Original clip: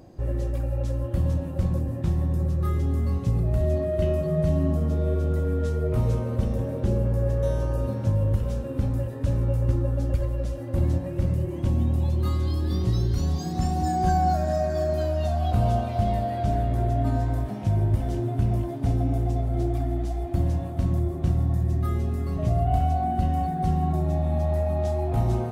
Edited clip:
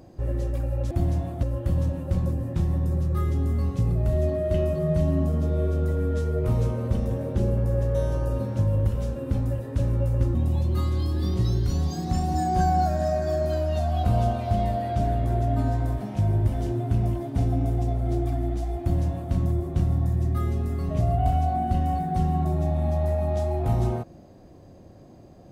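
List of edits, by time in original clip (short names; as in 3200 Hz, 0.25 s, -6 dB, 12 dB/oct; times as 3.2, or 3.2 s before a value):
9.83–11.83 cut
20.29–20.81 copy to 0.91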